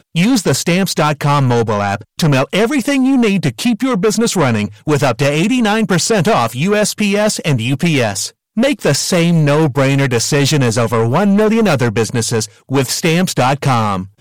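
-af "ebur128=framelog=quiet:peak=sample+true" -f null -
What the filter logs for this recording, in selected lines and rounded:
Integrated loudness:
  I:         -13.8 LUFS
  Threshold: -23.8 LUFS
Loudness range:
  LRA:         1.4 LU
  Threshold: -33.7 LUFS
  LRA low:   -14.2 LUFS
  LRA high:  -12.8 LUFS
Sample peak:
  Peak:       -7.7 dBFS
True peak:
  Peak:       -7.1 dBFS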